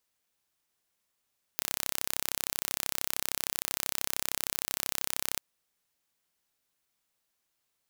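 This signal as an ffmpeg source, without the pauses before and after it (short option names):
-f lavfi -i "aevalsrc='0.708*eq(mod(n,1336),0)':d=3.81:s=44100"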